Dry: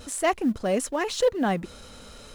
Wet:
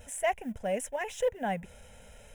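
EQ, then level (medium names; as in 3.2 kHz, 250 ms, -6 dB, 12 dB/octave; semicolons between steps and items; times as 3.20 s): static phaser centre 1.2 kHz, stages 6; -4.0 dB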